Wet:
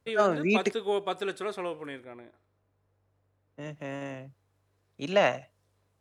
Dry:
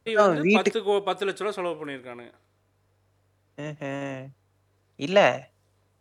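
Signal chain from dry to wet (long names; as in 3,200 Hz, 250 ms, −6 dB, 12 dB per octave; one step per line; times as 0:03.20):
0:02.04–0:03.61: high-shelf EQ 2,300 Hz −10.5 dB
level −5 dB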